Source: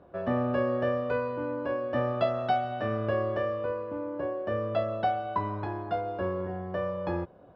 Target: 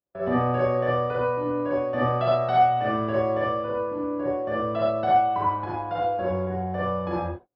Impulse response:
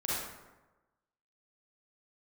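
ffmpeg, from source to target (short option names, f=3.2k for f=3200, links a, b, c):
-filter_complex "[0:a]agate=range=-41dB:threshold=-40dB:ratio=16:detection=peak[a];[1:a]atrim=start_sample=2205,atrim=end_sample=6174[b];[a][b]afir=irnorm=-1:irlink=0"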